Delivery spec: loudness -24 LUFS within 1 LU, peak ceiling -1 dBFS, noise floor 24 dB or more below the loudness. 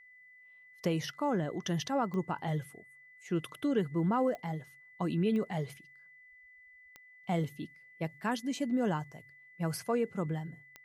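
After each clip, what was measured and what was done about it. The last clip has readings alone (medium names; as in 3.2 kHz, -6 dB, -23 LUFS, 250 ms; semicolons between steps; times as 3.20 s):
clicks found 5; steady tone 2 kHz; tone level -55 dBFS; loudness -34.0 LUFS; peak level -19.0 dBFS; loudness target -24.0 LUFS
-> de-click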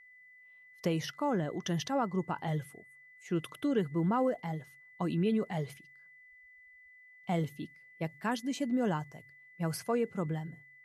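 clicks found 0; steady tone 2 kHz; tone level -55 dBFS
-> band-stop 2 kHz, Q 30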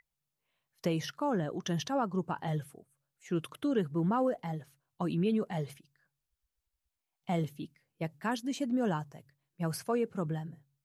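steady tone not found; loudness -34.0 LUFS; peak level -19.0 dBFS; loudness target -24.0 LUFS
-> trim +10 dB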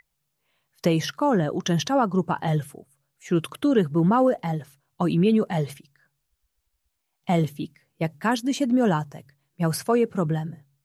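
loudness -24.0 LUFS; peak level -9.0 dBFS; noise floor -77 dBFS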